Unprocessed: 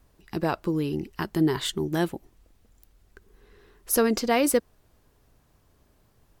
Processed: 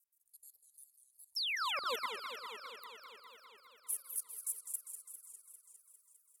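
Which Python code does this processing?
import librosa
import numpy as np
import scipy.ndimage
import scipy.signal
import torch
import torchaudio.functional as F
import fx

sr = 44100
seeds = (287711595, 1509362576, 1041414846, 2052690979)

p1 = fx.pitch_glide(x, sr, semitones=-2.5, runs='ending unshifted')
p2 = fx.low_shelf(p1, sr, hz=250.0, db=7.5)
p3 = fx.transient(p2, sr, attack_db=1, sustain_db=-8)
p4 = scipy.signal.sosfilt(scipy.signal.cheby2(4, 60, [150.0, 3000.0], 'bandstop', fs=sr, output='sos'), p3)
p5 = fx.spec_paint(p4, sr, seeds[0], shape='fall', start_s=1.36, length_s=0.59, low_hz=220.0, high_hz=5700.0, level_db=-29.0)
p6 = fx.filter_lfo_highpass(p5, sr, shape='sine', hz=6.5, low_hz=600.0, high_hz=3800.0, q=2.0)
p7 = p6 + fx.echo_alternate(p6, sr, ms=125, hz=1100.0, feedback_pct=63, wet_db=-5.5, dry=0)
p8 = fx.level_steps(p7, sr, step_db=20)
p9 = fx.buffer_crackle(p8, sr, first_s=0.85, period_s=0.94, block=2048, kind='zero')
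p10 = fx.echo_warbled(p9, sr, ms=201, feedback_pct=75, rate_hz=2.8, cents=164, wet_db=-8.5)
y = F.gain(torch.from_numpy(p10), 4.0).numpy()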